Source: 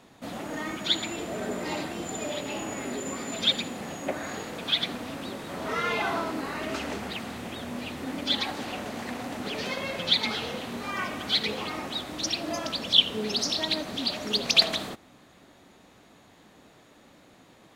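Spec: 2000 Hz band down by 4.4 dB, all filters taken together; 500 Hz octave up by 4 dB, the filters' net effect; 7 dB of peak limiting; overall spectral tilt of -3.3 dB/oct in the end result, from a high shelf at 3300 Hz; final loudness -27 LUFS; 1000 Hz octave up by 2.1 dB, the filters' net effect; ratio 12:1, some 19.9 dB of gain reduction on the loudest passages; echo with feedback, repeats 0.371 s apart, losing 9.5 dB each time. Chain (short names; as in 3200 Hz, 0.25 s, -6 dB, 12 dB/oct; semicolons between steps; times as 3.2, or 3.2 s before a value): bell 500 Hz +4.5 dB; bell 1000 Hz +3 dB; bell 2000 Hz -8.5 dB; high shelf 3300 Hz +4.5 dB; compressor 12:1, threshold -33 dBFS; limiter -28 dBFS; feedback echo 0.371 s, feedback 33%, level -9.5 dB; gain +10 dB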